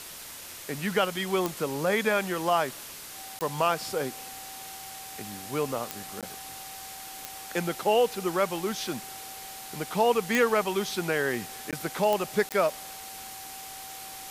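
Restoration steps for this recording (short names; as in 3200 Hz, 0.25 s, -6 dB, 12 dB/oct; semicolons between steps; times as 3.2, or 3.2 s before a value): de-click; notch 770 Hz, Q 30; interpolate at 3.39/6.21/11.71/12.49, 17 ms; noise print and reduce 30 dB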